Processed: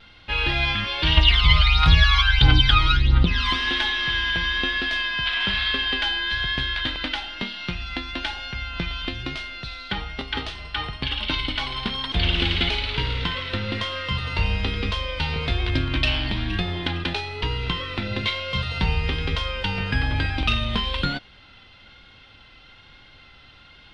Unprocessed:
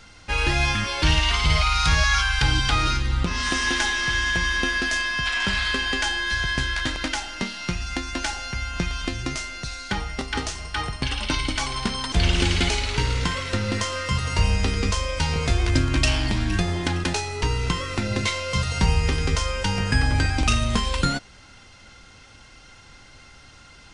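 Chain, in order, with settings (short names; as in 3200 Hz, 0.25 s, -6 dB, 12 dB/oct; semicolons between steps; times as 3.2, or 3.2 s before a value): vibrato 1.1 Hz 29 cents; 1.17–3.56 phaser 1.5 Hz, delay 1 ms, feedback 67%; resonant high shelf 5000 Hz -13 dB, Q 3; gain -3 dB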